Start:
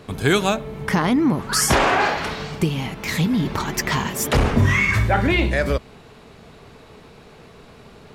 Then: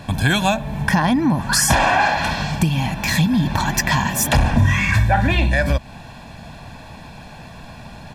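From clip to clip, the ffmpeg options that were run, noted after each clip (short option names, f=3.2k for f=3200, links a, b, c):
-af "aecho=1:1:1.2:0.84,acompressor=threshold=-23dB:ratio=2,volume=5.5dB"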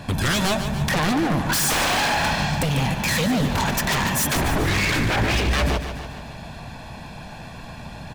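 -af "aeval=exprs='0.15*(abs(mod(val(0)/0.15+3,4)-2)-1)':c=same,aecho=1:1:145|290|435|580|725|870|1015:0.335|0.188|0.105|0.0588|0.0329|0.0184|0.0103"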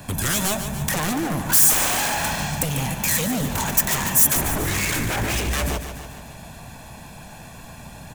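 -filter_complex "[0:a]acrossover=split=350|930|3500[a][b][c][d];[c]acrusher=bits=3:mode=log:mix=0:aa=0.000001[e];[d]aexciter=amount=4.6:drive=4:freq=6.2k[f];[a][b][e][f]amix=inputs=4:normalize=0,volume=-3.5dB"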